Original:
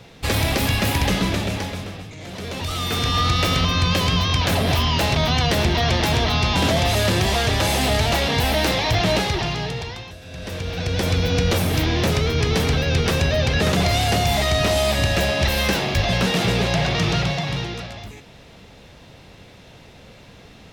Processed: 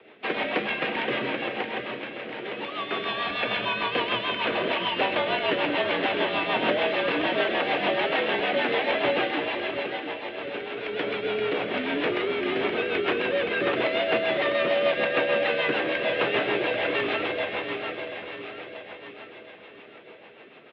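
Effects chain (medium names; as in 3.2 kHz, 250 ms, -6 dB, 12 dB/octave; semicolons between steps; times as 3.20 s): 3.08–3.79 s: comb 1.2 ms, depth 62%; mistuned SSB -57 Hz 340–3100 Hz; feedback delay 688 ms, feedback 52%, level -7 dB; rotary cabinet horn 6.7 Hz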